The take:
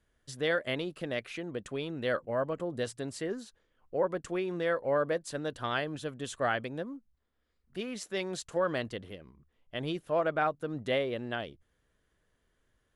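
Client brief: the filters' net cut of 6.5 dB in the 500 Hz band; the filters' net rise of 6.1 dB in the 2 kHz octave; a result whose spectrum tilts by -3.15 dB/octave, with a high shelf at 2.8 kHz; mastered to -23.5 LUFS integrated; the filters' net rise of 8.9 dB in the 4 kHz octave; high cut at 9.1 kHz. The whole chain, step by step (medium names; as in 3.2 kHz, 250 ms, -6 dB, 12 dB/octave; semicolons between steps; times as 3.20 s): low-pass 9.1 kHz; peaking EQ 500 Hz -8.5 dB; peaking EQ 2 kHz +5.5 dB; treble shelf 2.8 kHz +3.5 dB; peaking EQ 4 kHz +7 dB; trim +9 dB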